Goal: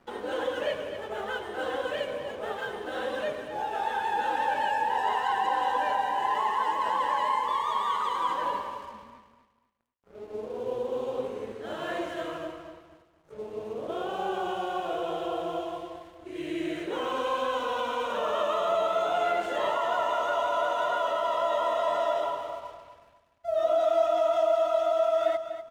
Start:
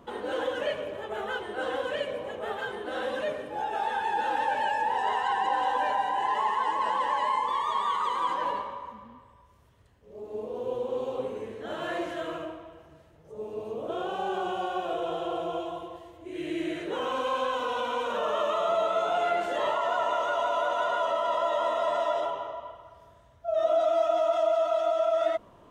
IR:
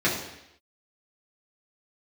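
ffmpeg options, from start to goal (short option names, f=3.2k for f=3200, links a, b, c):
-af "aeval=exprs='sgn(val(0))*max(abs(val(0))-0.00224,0)':c=same,aecho=1:1:245|490|735:0.299|0.0836|0.0234"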